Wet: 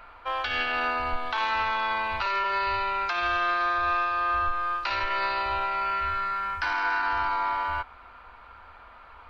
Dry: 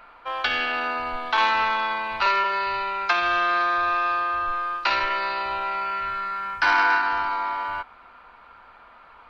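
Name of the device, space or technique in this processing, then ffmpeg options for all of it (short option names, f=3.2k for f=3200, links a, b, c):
car stereo with a boomy subwoofer: -af "lowshelf=f=110:t=q:w=1.5:g=8,alimiter=limit=-17.5dB:level=0:latency=1:release=210"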